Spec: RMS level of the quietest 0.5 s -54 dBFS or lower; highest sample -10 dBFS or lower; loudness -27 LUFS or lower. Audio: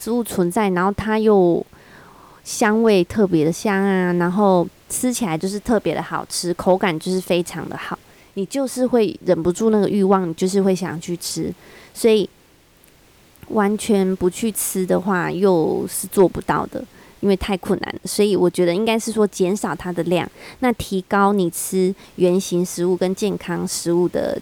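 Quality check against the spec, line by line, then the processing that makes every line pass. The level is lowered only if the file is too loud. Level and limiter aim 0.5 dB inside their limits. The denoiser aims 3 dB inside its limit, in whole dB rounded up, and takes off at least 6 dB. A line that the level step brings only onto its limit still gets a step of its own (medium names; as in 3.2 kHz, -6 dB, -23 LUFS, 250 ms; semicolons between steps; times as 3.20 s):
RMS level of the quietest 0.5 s -52 dBFS: fail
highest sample -4.5 dBFS: fail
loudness -19.5 LUFS: fail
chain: trim -8 dB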